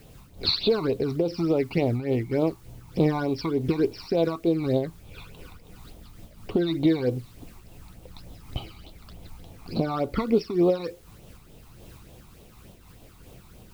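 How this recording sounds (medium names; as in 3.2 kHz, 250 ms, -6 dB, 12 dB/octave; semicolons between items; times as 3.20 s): phasing stages 12, 3.4 Hz, lowest notch 510–1800 Hz; a quantiser's noise floor 10-bit, dither triangular; random flutter of the level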